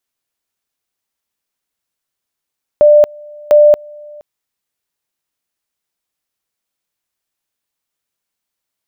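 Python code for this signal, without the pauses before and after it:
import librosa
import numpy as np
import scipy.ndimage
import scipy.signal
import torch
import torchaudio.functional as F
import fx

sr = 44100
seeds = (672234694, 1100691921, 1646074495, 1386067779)

y = fx.two_level_tone(sr, hz=594.0, level_db=-3.0, drop_db=27.5, high_s=0.23, low_s=0.47, rounds=2)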